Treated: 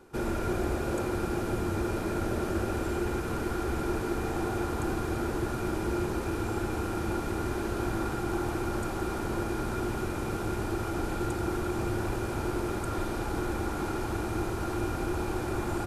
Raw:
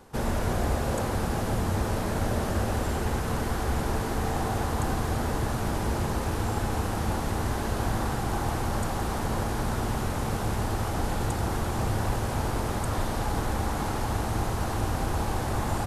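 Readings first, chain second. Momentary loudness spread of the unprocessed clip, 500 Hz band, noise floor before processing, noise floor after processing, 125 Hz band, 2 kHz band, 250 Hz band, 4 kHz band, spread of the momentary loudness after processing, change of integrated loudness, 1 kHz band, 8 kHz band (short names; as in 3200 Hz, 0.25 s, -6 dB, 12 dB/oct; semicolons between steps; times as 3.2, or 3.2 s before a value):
1 LU, 0.0 dB, -30 dBFS, -34 dBFS, -6.0 dB, -2.0 dB, +0.5 dB, -6.0 dB, 2 LU, -2.5 dB, -4.5 dB, -6.0 dB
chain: small resonant body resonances 350/1400/2400 Hz, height 14 dB, ringing for 50 ms; gain -6 dB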